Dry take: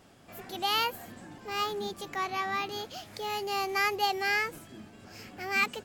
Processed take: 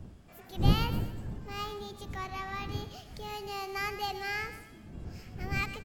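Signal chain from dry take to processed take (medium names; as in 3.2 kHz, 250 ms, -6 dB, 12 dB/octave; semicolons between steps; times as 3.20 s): wind noise 140 Hz -29 dBFS; feedback delay 119 ms, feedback 40%, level -12 dB; trim -7 dB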